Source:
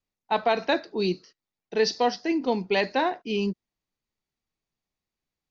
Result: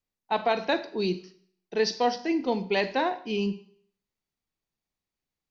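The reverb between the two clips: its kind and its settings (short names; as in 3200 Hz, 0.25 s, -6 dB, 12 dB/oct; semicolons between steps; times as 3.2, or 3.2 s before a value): Schroeder reverb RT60 0.57 s, combs from 33 ms, DRR 12.5 dB; gain -2 dB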